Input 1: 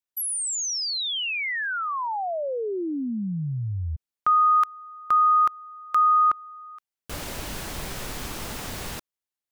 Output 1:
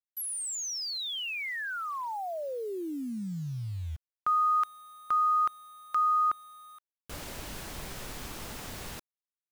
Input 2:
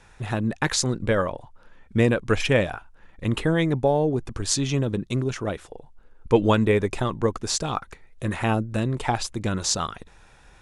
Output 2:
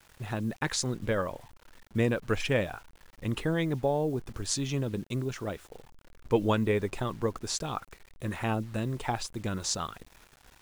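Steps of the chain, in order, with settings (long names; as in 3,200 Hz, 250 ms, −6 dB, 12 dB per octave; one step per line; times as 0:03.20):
bit-depth reduction 8 bits, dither none
level −7 dB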